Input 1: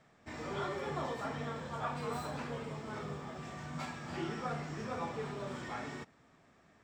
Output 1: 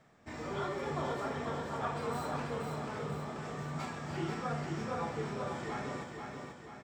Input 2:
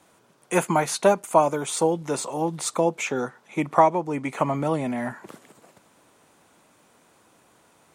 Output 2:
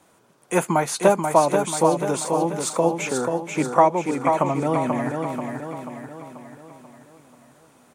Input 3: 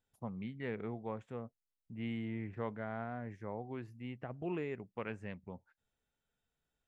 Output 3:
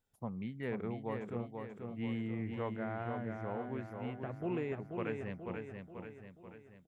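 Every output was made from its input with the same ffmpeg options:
-filter_complex "[0:a]equalizer=f=3.2k:w=0.6:g=-2.5,asplit=2[a][b];[b]aecho=0:1:486|972|1458|1944|2430|2916:0.562|0.287|0.146|0.0746|0.038|0.0194[c];[a][c]amix=inputs=2:normalize=0,volume=1.5dB"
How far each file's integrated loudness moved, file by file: +2.0, +2.0, +2.0 LU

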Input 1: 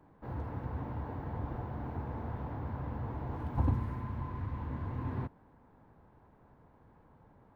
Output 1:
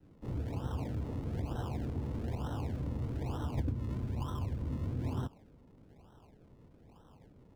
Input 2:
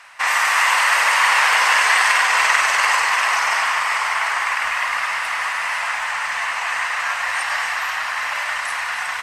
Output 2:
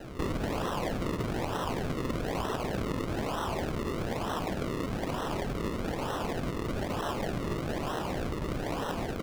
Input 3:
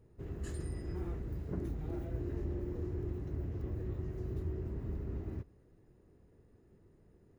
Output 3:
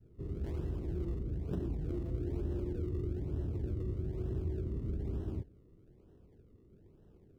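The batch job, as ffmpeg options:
-filter_complex "[0:a]adynamicequalizer=threshold=0.0126:dfrequency=480:dqfactor=1.2:tfrequency=480:tqfactor=1.2:attack=5:release=100:ratio=0.375:range=1.5:mode=boostabove:tftype=bell,acrossover=split=620[a][b];[b]acrusher=samples=38:mix=1:aa=0.000001:lfo=1:lforange=38:lforate=1.1[c];[a][c]amix=inputs=2:normalize=0,highshelf=f=5.1k:g=-8,acompressor=threshold=-33dB:ratio=8,volume=3dB"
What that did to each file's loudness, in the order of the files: +0.5, -16.0, +2.0 LU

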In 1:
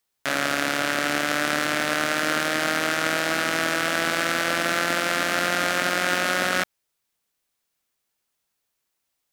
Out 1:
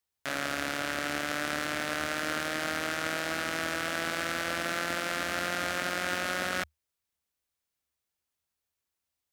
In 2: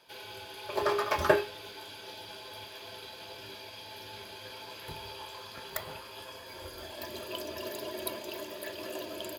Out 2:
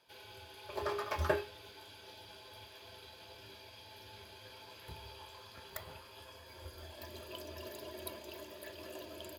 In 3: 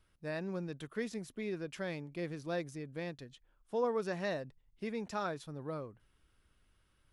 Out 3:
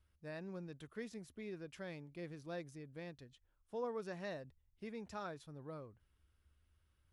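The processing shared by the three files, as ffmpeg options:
-af "equalizer=f=75:t=o:w=0.56:g=15,volume=-8.5dB"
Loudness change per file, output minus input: -8.5, -8.0, -8.5 LU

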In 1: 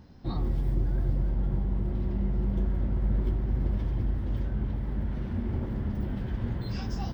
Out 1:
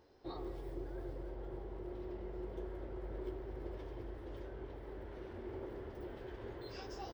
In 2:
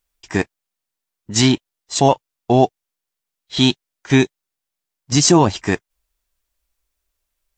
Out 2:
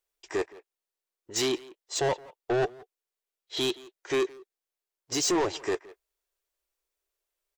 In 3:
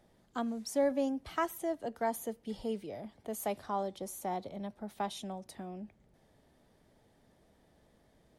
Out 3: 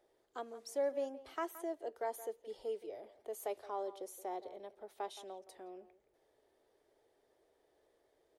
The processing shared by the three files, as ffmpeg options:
-filter_complex "[0:a]lowshelf=f=280:t=q:w=3:g=-11.5,asoftclip=type=tanh:threshold=-14dB,asplit=2[a][b];[b]adelay=170,highpass=300,lowpass=3.4k,asoftclip=type=hard:threshold=-22dB,volume=-15dB[c];[a][c]amix=inputs=2:normalize=0,volume=-8dB"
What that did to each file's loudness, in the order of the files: -16.0, -12.5, -6.0 LU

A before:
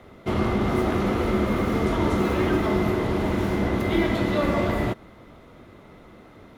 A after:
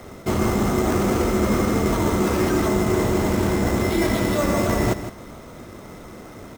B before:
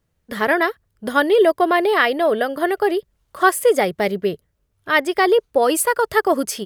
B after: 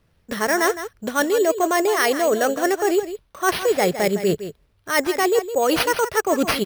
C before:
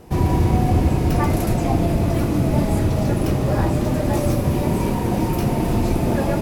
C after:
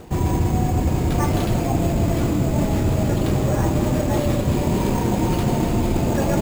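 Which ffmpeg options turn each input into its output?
-af "areverse,acompressor=threshold=-25dB:ratio=6,areverse,acrusher=samples=6:mix=1:aa=0.000001,aecho=1:1:161:0.266,volume=8dB"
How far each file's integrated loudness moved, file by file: +2.5, -2.5, -1.0 LU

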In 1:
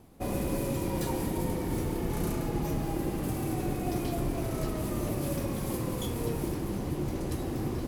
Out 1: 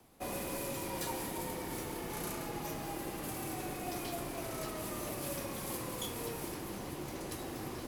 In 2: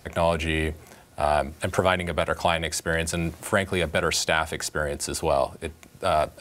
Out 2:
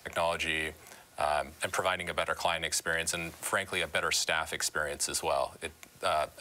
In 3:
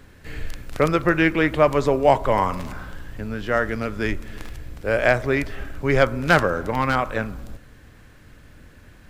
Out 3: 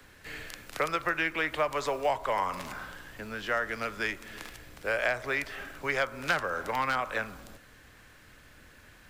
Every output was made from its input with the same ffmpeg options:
-filter_complex "[0:a]lowshelf=f=490:g=-11.5,acrossover=split=120|510[a][b][c];[a]acompressor=threshold=-51dB:ratio=4[d];[b]acompressor=threshold=-41dB:ratio=4[e];[c]acompressor=threshold=-26dB:ratio=4[f];[d][e][f]amix=inputs=3:normalize=0,acrossover=split=130|460|7000[g][h][i][j];[h]acrusher=bits=6:mode=log:mix=0:aa=0.000001[k];[g][k][i][j]amix=inputs=4:normalize=0"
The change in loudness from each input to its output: -7.0, -6.0, -10.0 LU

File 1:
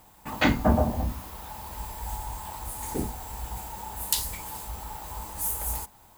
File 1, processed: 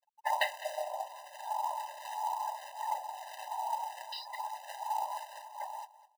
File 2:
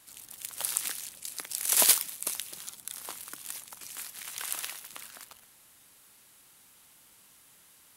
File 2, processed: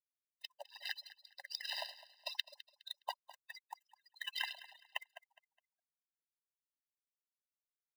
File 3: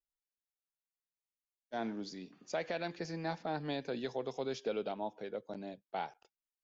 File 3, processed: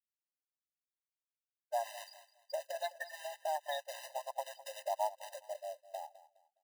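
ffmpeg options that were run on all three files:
-filter_complex "[0:a]afftfilt=real='re*gte(hypot(re,im),0.0126)':imag='im*gte(hypot(re,im),0.0126)':win_size=1024:overlap=0.75,acrossover=split=330[a][b];[a]asoftclip=type=tanh:threshold=-20.5dB[c];[b]equalizer=f=1.2k:w=4.5:g=-8[d];[c][d]amix=inputs=2:normalize=0,acompressor=threshold=-35dB:ratio=12,acrossover=split=520[e][f];[e]aeval=exprs='val(0)*(1-1/2+1/2*cos(2*PI*1.5*n/s))':c=same[g];[f]aeval=exprs='val(0)*(1-1/2-1/2*cos(2*PI*1.5*n/s))':c=same[h];[g][h]amix=inputs=2:normalize=0,aresample=11025,aresample=44100,acrusher=bits=3:mode=log:mix=0:aa=0.000001,asplit=2[i][j];[j]aecho=0:1:207|414|621:0.141|0.041|0.0119[k];[i][k]amix=inputs=2:normalize=0,asubboost=boost=7.5:cutoff=160,afftfilt=real='re*eq(mod(floor(b*sr/1024/520),2),1)':imag='im*eq(mod(floor(b*sr/1024/520),2),1)':win_size=1024:overlap=0.75,volume=13.5dB"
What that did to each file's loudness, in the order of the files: -7.5, -15.0, -1.0 LU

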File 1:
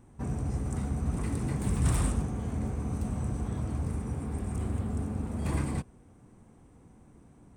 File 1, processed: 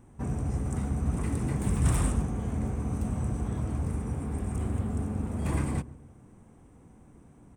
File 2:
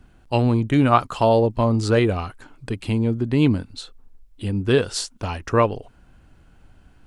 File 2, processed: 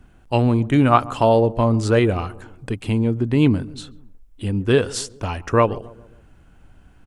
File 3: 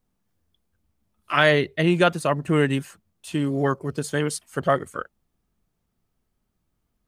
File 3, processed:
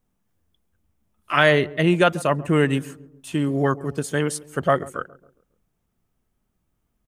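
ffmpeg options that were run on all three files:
-filter_complex "[0:a]equalizer=f=4.4k:t=o:w=0.5:g=-5,asplit=2[a][b];[b]adelay=137,lowpass=f=860:p=1,volume=-18dB,asplit=2[c][d];[d]adelay=137,lowpass=f=860:p=1,volume=0.52,asplit=2[e][f];[f]adelay=137,lowpass=f=860:p=1,volume=0.52,asplit=2[g][h];[h]adelay=137,lowpass=f=860:p=1,volume=0.52[i];[c][e][g][i]amix=inputs=4:normalize=0[j];[a][j]amix=inputs=2:normalize=0,volume=1.5dB"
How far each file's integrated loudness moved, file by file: +1.5, +1.5, +1.5 LU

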